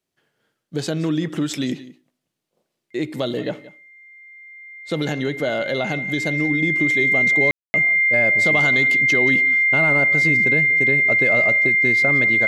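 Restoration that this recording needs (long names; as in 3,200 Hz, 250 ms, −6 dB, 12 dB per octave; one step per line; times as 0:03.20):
notch filter 2,100 Hz, Q 30
ambience match 0:07.51–0:07.74
echo removal 178 ms −18 dB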